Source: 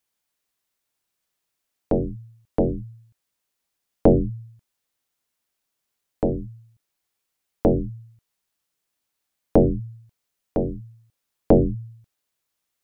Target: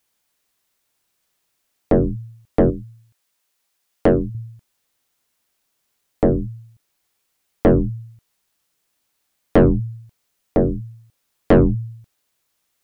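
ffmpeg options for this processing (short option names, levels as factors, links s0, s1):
-filter_complex "[0:a]asettb=1/sr,asplit=3[s0][s1][s2];[s0]atrim=end=2.704[s3];[s1]atrim=start=2.7:end=4.35,asetpts=PTS-STARTPTS,afade=t=in:d=0.004:c=qsin,afade=t=out:st=1.646:d=0.004:c=qsin,lowshelf=f=360:g=-9.5[s4];[s2]atrim=start=4.346[s5];[s3][s4]acrossfade=d=0.004:c1=hsin:c2=qsin[s6];[s6][s5]acrossfade=d=0.004:c1=qsin:c2=hsin,asoftclip=type=tanh:threshold=0.168,volume=2.51"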